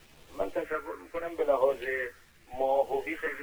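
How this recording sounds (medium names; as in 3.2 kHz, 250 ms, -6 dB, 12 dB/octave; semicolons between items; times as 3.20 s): phasing stages 4, 0.81 Hz, lowest notch 710–1600 Hz; a quantiser's noise floor 10-bit, dither none; tremolo triangle 0.73 Hz, depth 55%; a shimmering, thickened sound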